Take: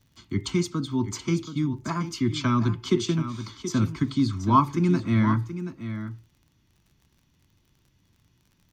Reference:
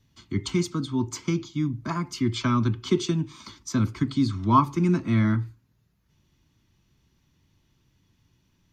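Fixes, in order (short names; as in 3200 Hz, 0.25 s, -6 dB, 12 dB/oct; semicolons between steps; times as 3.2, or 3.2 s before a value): de-click; inverse comb 0.728 s -11 dB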